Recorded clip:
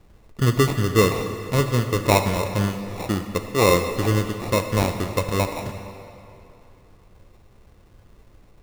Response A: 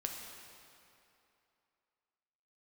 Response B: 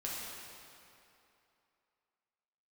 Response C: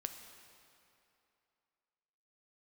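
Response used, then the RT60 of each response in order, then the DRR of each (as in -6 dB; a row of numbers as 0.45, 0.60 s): C; 2.8, 2.8, 2.8 s; 1.0, -6.0, 6.0 dB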